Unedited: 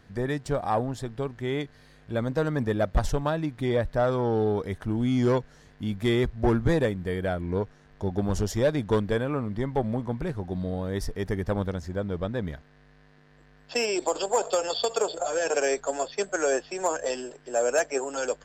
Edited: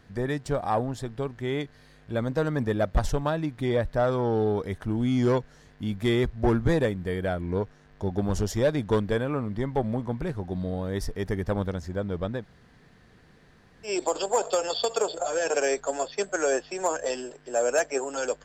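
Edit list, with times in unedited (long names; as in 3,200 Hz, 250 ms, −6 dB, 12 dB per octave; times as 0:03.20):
0:12.40–0:13.88: fill with room tone, crossfade 0.10 s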